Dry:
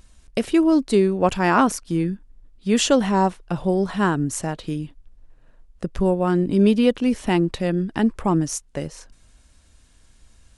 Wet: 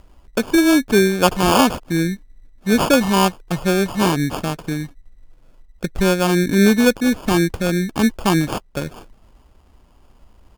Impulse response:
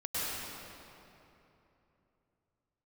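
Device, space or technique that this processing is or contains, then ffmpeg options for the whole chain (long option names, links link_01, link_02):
crushed at another speed: -af "asetrate=35280,aresample=44100,acrusher=samples=28:mix=1:aa=0.000001,asetrate=55125,aresample=44100,volume=3dB"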